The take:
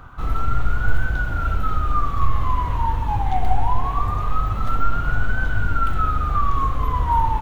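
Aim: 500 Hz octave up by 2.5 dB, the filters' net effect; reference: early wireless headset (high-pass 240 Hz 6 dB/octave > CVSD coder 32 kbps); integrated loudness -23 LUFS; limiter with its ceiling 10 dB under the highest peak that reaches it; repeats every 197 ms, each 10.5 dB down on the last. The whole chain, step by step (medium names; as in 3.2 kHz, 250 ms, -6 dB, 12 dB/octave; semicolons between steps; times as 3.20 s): peaking EQ 500 Hz +4.5 dB; peak limiter -13.5 dBFS; high-pass 240 Hz 6 dB/octave; feedback delay 197 ms, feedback 30%, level -10.5 dB; CVSD coder 32 kbps; trim +4.5 dB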